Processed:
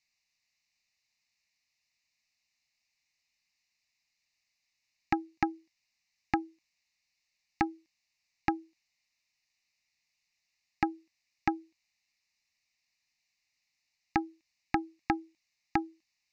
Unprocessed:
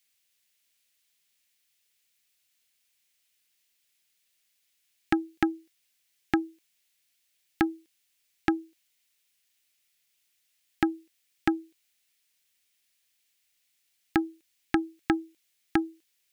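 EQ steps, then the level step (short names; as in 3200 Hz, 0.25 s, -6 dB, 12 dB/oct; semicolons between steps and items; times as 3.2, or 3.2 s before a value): LPF 6000 Hz 12 dB/oct; dynamic EQ 880 Hz, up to +4 dB, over -40 dBFS, Q 0.82; fixed phaser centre 2200 Hz, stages 8; 0.0 dB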